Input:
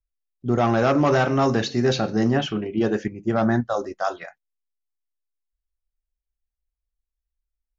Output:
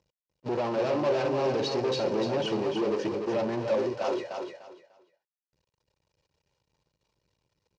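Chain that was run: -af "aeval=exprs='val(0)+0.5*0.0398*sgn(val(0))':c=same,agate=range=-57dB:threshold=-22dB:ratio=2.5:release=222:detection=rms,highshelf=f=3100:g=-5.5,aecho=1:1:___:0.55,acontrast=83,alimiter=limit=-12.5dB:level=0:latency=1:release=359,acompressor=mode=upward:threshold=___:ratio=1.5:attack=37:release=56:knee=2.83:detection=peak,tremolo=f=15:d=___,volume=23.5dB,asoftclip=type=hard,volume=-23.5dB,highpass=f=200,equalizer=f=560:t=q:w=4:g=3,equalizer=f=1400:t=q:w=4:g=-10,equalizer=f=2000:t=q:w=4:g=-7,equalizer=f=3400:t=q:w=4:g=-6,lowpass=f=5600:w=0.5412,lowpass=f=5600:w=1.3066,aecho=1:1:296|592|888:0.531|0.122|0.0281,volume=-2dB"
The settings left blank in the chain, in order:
2.1, -42dB, 0.35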